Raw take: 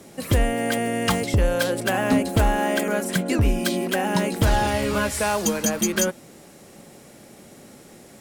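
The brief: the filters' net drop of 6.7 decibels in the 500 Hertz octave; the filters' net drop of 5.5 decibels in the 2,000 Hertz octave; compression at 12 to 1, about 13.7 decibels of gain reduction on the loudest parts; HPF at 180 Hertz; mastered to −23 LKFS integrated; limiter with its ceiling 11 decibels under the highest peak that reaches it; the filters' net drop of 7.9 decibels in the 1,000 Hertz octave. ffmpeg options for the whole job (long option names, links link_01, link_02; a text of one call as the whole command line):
ffmpeg -i in.wav -af "highpass=180,equalizer=frequency=500:width_type=o:gain=-6,equalizer=frequency=1000:width_type=o:gain=-7.5,equalizer=frequency=2000:width_type=o:gain=-4,acompressor=threshold=-33dB:ratio=12,volume=18dB,alimiter=limit=-13dB:level=0:latency=1" out.wav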